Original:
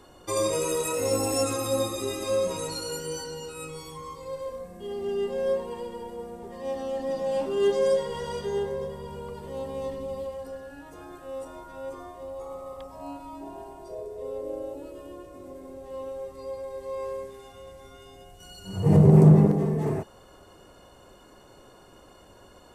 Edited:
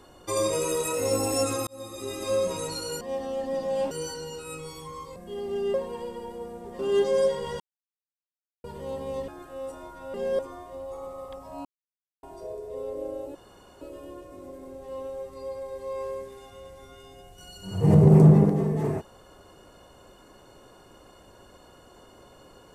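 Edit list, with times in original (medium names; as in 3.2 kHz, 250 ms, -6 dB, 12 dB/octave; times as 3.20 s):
1.67–2.31 s: fade in
4.26–4.69 s: delete
5.27–5.52 s: move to 11.87 s
6.57–7.47 s: move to 3.01 s
8.28–9.32 s: mute
9.96–11.01 s: delete
13.13–13.71 s: mute
14.83 s: insert room tone 0.46 s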